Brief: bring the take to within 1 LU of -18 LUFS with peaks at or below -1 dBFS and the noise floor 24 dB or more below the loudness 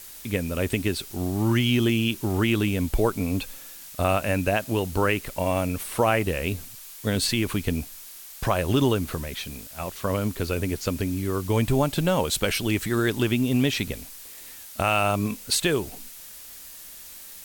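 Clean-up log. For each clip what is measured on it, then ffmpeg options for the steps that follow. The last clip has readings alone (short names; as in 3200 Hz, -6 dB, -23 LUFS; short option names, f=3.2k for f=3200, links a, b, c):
noise floor -43 dBFS; noise floor target -49 dBFS; loudness -25.0 LUFS; peak -9.5 dBFS; loudness target -18.0 LUFS
-> -af "afftdn=nr=6:nf=-43"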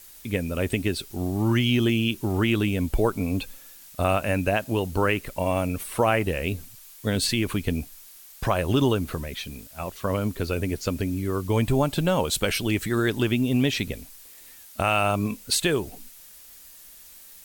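noise floor -48 dBFS; noise floor target -49 dBFS
-> -af "afftdn=nr=6:nf=-48"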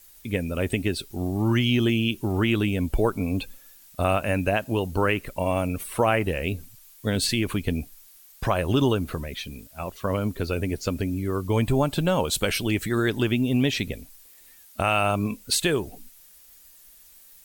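noise floor -52 dBFS; loudness -25.0 LUFS; peak -10.0 dBFS; loudness target -18.0 LUFS
-> -af "volume=7dB"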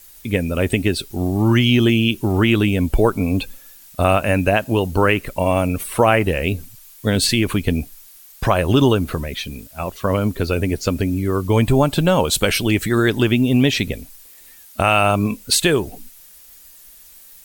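loudness -18.0 LUFS; peak -3.0 dBFS; noise floor -45 dBFS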